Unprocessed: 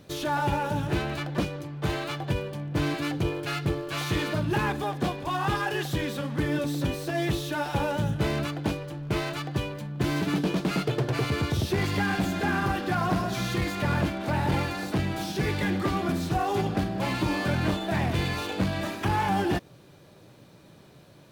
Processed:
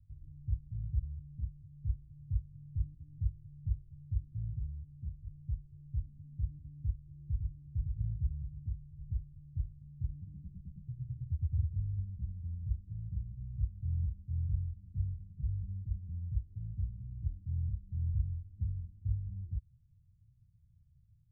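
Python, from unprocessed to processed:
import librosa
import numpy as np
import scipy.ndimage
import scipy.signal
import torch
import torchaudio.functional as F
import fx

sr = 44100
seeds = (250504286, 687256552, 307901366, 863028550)

y = fx.echo_throw(x, sr, start_s=6.76, length_s=0.75, ms=560, feedback_pct=50, wet_db=-3.0)
y = scipy.signal.sosfilt(scipy.signal.cheby2(4, 80, 500.0, 'lowpass', fs=sr, output='sos'), y)
y = y * 10.0 ** (3.0 / 20.0)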